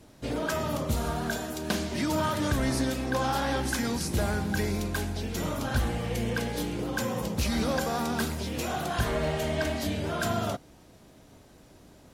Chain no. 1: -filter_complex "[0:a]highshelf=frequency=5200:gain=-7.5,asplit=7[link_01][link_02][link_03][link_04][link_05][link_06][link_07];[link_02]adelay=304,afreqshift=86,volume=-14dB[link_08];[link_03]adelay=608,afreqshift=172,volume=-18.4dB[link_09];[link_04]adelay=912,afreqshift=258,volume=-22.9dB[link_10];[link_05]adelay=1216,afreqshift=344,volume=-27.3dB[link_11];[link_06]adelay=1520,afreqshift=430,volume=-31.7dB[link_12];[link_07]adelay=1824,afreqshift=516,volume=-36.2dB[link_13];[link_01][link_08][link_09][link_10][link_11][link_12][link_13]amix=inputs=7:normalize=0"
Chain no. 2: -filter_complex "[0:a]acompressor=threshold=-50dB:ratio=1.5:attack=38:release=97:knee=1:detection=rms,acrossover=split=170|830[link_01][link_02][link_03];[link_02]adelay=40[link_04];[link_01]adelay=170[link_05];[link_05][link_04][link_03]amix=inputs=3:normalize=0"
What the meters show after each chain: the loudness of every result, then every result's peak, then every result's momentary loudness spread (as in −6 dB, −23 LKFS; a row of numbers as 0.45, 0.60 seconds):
−30.0, −38.5 LKFS; −16.5, −23.5 dBFS; 5, 9 LU